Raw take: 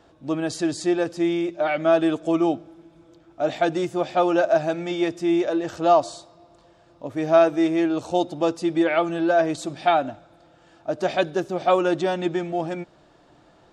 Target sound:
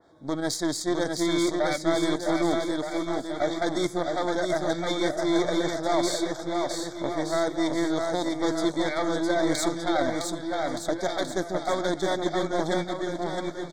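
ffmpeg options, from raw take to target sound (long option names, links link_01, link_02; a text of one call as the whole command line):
ffmpeg -i in.wav -filter_complex "[0:a]lowshelf=frequency=84:gain=-11.5,areverse,acompressor=threshold=-28dB:ratio=6,areverse,alimiter=level_in=3dB:limit=-24dB:level=0:latency=1:release=422,volume=-3dB,dynaudnorm=framelen=100:gausssize=3:maxgain=10dB,aeval=exprs='0.141*(cos(1*acos(clip(val(0)/0.141,-1,1)))-cos(1*PI/2))+0.00794*(cos(2*acos(clip(val(0)/0.141,-1,1)))-cos(2*PI/2))+0.02*(cos(3*acos(clip(val(0)/0.141,-1,1)))-cos(3*PI/2))+0.00447*(cos(6*acos(clip(val(0)/0.141,-1,1)))-cos(6*PI/2))':channel_layout=same,asuperstop=centerf=2700:order=20:qfactor=2.8,asplit=2[link_01][link_02];[link_02]aecho=0:1:660|1221|1698|2103|2448:0.631|0.398|0.251|0.158|0.1[link_03];[link_01][link_03]amix=inputs=2:normalize=0,adynamicequalizer=threshold=0.00708:dfrequency=2700:dqfactor=0.7:tfrequency=2700:tqfactor=0.7:attack=5:release=100:ratio=0.375:range=3.5:mode=boostabove:tftype=highshelf" out.wav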